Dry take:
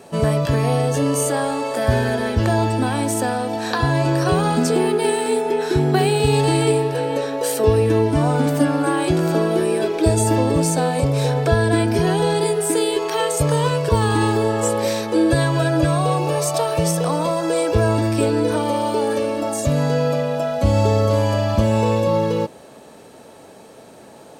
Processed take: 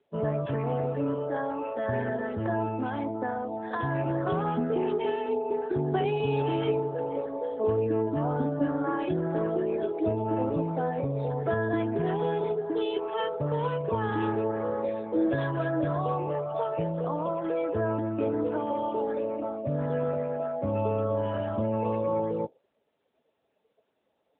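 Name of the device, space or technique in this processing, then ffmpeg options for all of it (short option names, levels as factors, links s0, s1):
mobile call with aggressive noise cancelling: -af "highpass=f=170:p=1,afftdn=nr=24:nf=-27,volume=0.398" -ar 8000 -c:a libopencore_amrnb -b:a 10200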